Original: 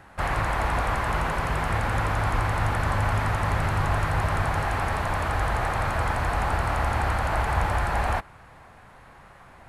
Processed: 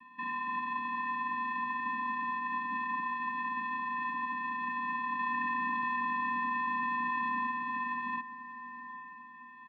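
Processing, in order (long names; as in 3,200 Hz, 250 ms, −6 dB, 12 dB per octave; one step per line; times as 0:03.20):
spectral tilt +2 dB per octave
notch filter 2,000 Hz, Q 8
comb filter 1.2 ms, depth 89%
brickwall limiter −19.5 dBFS, peak gain reduction 9 dB
flanger 0.36 Hz, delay 3.2 ms, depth 4.5 ms, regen −32%
channel vocoder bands 8, square 391 Hz
feedback delay with all-pass diffusion 807 ms, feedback 44%, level −13 dB
single-sideband voice off tune −150 Hz 180–3,400 Hz
0:05.19–0:07.47: envelope flattener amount 100%
level −2.5 dB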